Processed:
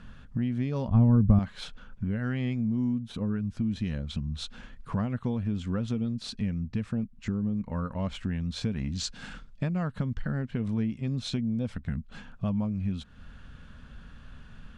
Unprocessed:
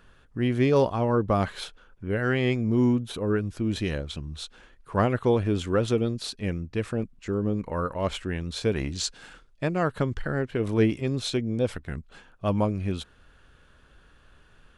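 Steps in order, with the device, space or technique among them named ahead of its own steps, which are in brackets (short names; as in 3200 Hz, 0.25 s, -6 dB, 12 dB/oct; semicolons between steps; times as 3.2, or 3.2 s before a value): jukebox (LPF 7200 Hz 12 dB/oct; resonant low shelf 280 Hz +6.5 dB, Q 3; compressor 4:1, threshold -33 dBFS, peak gain reduction 19.5 dB); 0.88–1.39 RIAA curve playback; gain +3.5 dB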